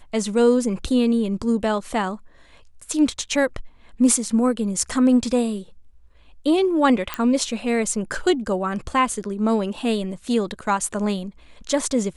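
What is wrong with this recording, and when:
0:07.14: click −9 dBFS

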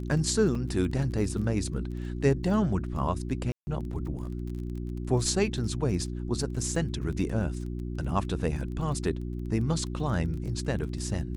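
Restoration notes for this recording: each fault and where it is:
surface crackle 20 per second −37 dBFS
mains hum 60 Hz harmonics 6 −34 dBFS
0:00.55: drop-out 3.6 ms
0:03.52–0:03.67: drop-out 150 ms

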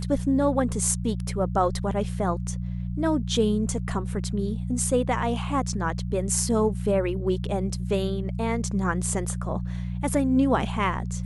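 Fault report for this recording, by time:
mains hum 60 Hz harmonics 3 −30 dBFS

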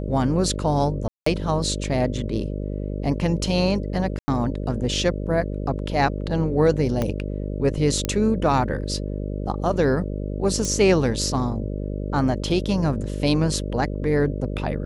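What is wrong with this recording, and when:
mains buzz 50 Hz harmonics 12 −28 dBFS
0:01.08–0:01.26: drop-out 184 ms
0:04.19–0:04.28: drop-out 90 ms
0:07.02: click −11 dBFS
0:08.05: click −9 dBFS
0:10.65: click −13 dBFS

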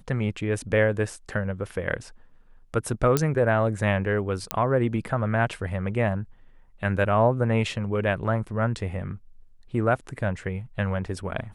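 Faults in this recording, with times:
0:03.17: click −7 dBFS
0:04.51: click −6 dBFS

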